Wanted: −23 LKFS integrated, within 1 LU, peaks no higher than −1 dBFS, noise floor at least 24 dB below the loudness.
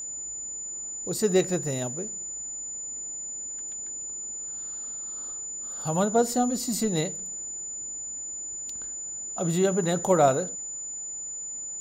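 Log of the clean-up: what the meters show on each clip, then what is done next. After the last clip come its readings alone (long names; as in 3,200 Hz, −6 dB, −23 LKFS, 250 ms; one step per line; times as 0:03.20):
interfering tone 7,000 Hz; level of the tone −33 dBFS; integrated loudness −28.5 LKFS; sample peak −8.5 dBFS; target loudness −23.0 LKFS
→ notch filter 7,000 Hz, Q 30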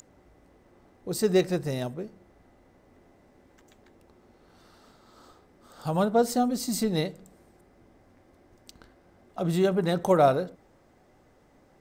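interfering tone none found; integrated loudness −26.5 LKFS; sample peak −9.0 dBFS; target loudness −23.0 LKFS
→ level +3.5 dB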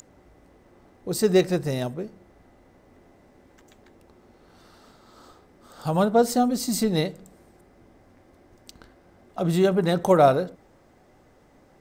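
integrated loudness −23.0 LKFS; sample peak −5.5 dBFS; background noise floor −57 dBFS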